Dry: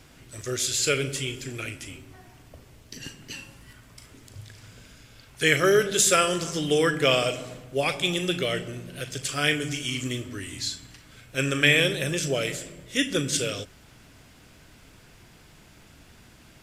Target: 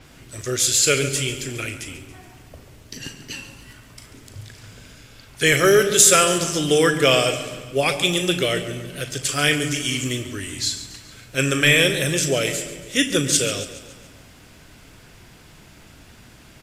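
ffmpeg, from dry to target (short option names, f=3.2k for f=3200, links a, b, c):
-filter_complex "[0:a]apsyclip=11.5dB,asplit=2[a][b];[b]aecho=0:1:140|280|420|560|700:0.211|0.114|0.0616|0.0333|0.018[c];[a][c]amix=inputs=2:normalize=0,adynamicequalizer=threshold=0.0562:dfrequency=5500:dqfactor=0.7:tfrequency=5500:tqfactor=0.7:attack=5:release=100:ratio=0.375:range=2.5:mode=boostabove:tftype=highshelf,volume=-6.5dB"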